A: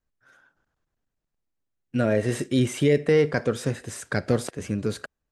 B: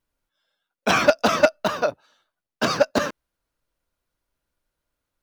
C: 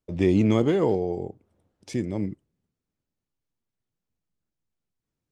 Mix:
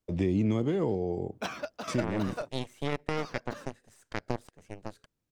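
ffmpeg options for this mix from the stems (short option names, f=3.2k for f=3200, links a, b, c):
-filter_complex "[0:a]aeval=exprs='0.398*(cos(1*acos(clip(val(0)/0.398,-1,1)))-cos(1*PI/2))+0.126*(cos(3*acos(clip(val(0)/0.398,-1,1)))-cos(3*PI/2))+0.0158*(cos(6*acos(clip(val(0)/0.398,-1,1)))-cos(6*PI/2))+0.00891*(cos(7*acos(clip(val(0)/0.398,-1,1)))-cos(7*PI/2))':c=same,volume=-3.5dB[a];[1:a]adelay=550,volume=-14dB[b];[2:a]acrossover=split=280[c][d];[d]acompressor=threshold=-35dB:ratio=1.5[e];[c][e]amix=inputs=2:normalize=0,volume=0.5dB,asplit=2[f][g];[g]apad=whole_len=254839[h];[b][h]sidechaingate=range=-7dB:threshold=-54dB:ratio=16:detection=peak[i];[a][i][f]amix=inputs=3:normalize=0,acompressor=threshold=-27dB:ratio=2"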